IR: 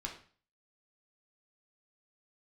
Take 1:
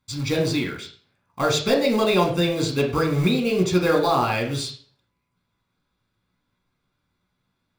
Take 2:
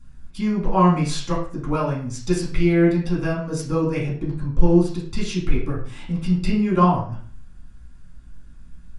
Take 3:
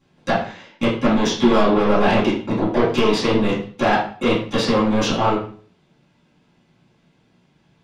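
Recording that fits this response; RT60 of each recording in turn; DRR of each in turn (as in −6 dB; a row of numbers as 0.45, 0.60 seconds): 1; 0.40, 0.40, 0.40 seconds; 0.0, −5.5, −10.0 decibels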